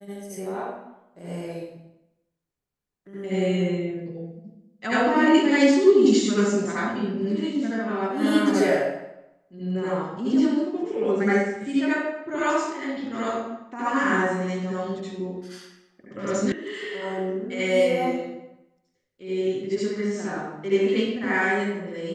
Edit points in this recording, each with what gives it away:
16.52 s: sound stops dead

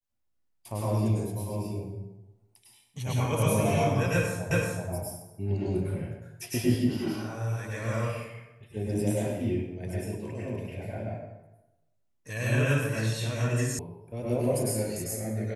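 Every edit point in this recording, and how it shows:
4.51 s: repeat of the last 0.38 s
13.79 s: sound stops dead

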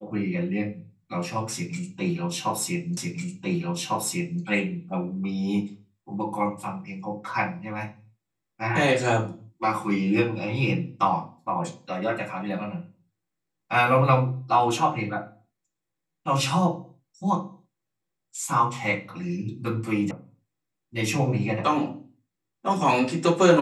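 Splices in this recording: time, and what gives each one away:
2.97 s: repeat of the last 1.45 s
20.11 s: sound stops dead

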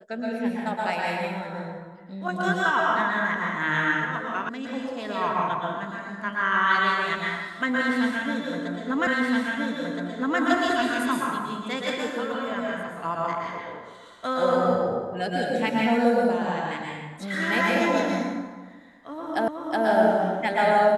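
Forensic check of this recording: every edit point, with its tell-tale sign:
4.49 s: sound stops dead
9.07 s: repeat of the last 1.32 s
19.48 s: repeat of the last 0.37 s

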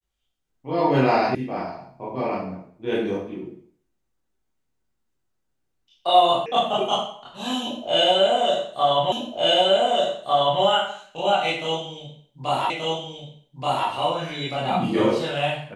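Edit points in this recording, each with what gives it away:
1.35 s: sound stops dead
6.46 s: sound stops dead
9.12 s: repeat of the last 1.5 s
12.70 s: repeat of the last 1.18 s

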